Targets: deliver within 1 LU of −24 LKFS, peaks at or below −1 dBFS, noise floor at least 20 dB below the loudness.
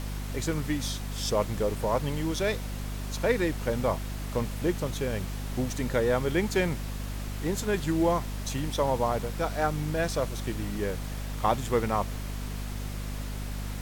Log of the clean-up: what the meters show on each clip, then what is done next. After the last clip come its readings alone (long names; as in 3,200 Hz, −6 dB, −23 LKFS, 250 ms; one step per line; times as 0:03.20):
mains hum 50 Hz; hum harmonics up to 250 Hz; level of the hum −32 dBFS; background noise floor −35 dBFS; target noise floor −50 dBFS; integrated loudness −30.0 LKFS; sample peak −11.0 dBFS; target loudness −24.0 LKFS
→ hum removal 50 Hz, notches 5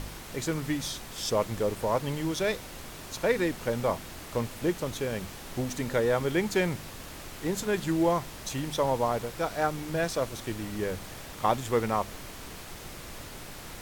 mains hum none found; background noise floor −43 dBFS; target noise floor −50 dBFS
→ noise reduction from a noise print 7 dB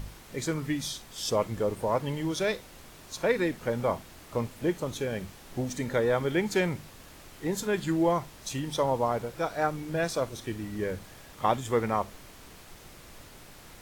background noise floor −50 dBFS; target noise floor −51 dBFS
→ noise reduction from a noise print 6 dB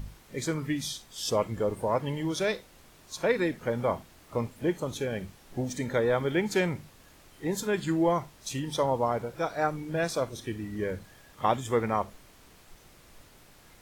background noise floor −56 dBFS; integrated loudness −30.5 LKFS; sample peak −11.5 dBFS; target loudness −24.0 LKFS
→ level +6.5 dB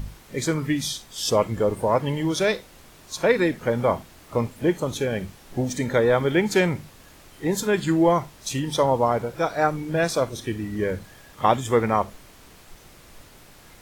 integrated loudness −24.0 LKFS; sample peak −5.0 dBFS; background noise floor −50 dBFS